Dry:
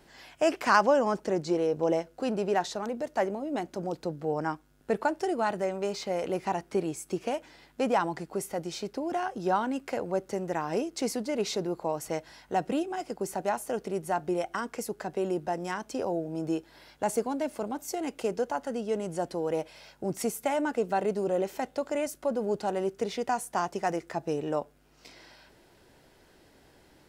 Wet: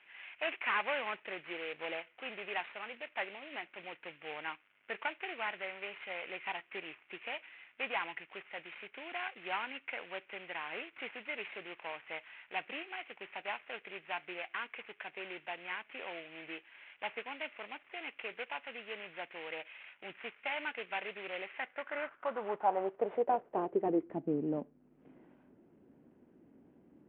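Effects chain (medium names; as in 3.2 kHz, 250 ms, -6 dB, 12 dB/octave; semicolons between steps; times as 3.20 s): CVSD coder 16 kbps; band-pass sweep 2.4 kHz -> 240 Hz, 21.44–24.35 s; trim +5 dB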